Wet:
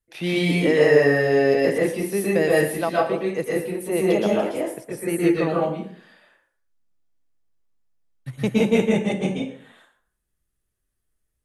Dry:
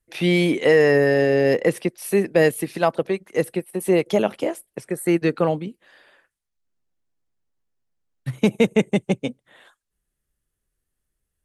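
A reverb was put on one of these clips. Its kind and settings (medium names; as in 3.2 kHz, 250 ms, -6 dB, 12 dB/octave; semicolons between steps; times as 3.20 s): plate-style reverb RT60 0.55 s, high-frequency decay 0.75×, pre-delay 105 ms, DRR -5 dB; trim -6 dB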